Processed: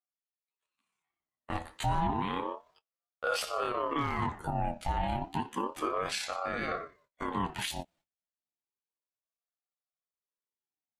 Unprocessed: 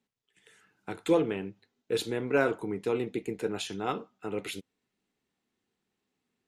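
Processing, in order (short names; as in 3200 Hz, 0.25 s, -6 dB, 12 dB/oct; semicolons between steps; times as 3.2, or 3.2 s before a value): gate -53 dBFS, range -27 dB; granular stretch 1.7×, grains 60 ms; one-sided clip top -18.5 dBFS, bottom -14 dBFS; limiter -26 dBFS, peak gain reduction 12 dB; ring modulator with a swept carrier 690 Hz, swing 40%, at 0.31 Hz; gain +6.5 dB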